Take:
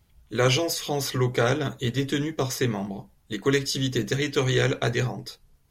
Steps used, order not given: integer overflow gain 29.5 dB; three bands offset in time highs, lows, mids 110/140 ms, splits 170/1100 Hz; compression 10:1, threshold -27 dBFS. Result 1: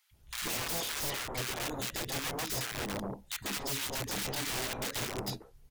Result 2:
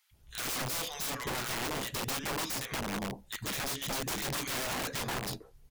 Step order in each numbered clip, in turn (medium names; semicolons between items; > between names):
compression > integer overflow > three bands offset in time; three bands offset in time > compression > integer overflow